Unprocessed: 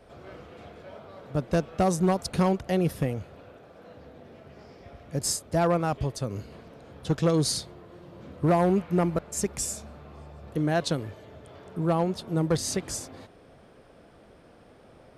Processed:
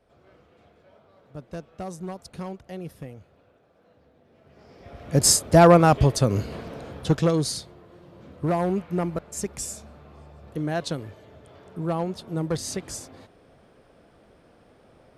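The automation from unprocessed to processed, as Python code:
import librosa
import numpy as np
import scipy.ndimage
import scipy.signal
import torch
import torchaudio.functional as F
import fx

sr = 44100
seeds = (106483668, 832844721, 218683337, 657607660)

y = fx.gain(x, sr, db=fx.line((4.26, -11.5), (4.83, 1.0), (5.19, 10.5), (6.8, 10.5), (7.51, -2.0)))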